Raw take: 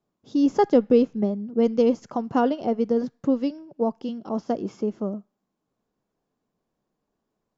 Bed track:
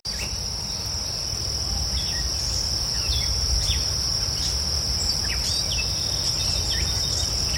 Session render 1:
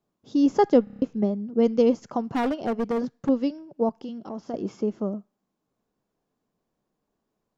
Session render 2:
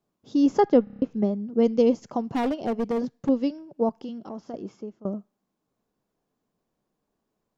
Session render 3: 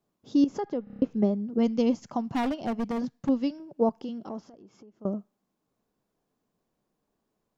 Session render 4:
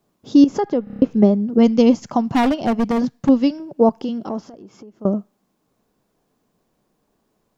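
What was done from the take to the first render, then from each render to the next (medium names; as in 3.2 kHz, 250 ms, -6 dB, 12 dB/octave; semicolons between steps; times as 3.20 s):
0.84 s: stutter in place 0.03 s, 6 plays; 2.34–3.29 s: hard clipper -21.5 dBFS; 3.89–4.54 s: compression 2.5:1, threshold -33 dBFS
0.60–1.11 s: distance through air 130 m; 1.63–3.44 s: peaking EQ 1.4 kHz -5 dB; 4.14–5.05 s: fade out, to -21 dB
0.44–0.97 s: compression 2:1, threshold -37 dBFS; 1.58–3.60 s: peaking EQ 440 Hz -9 dB; 4.42–5.01 s: compression 8:1, threshold -48 dBFS
trim +11 dB; peak limiter -3 dBFS, peak gain reduction 2 dB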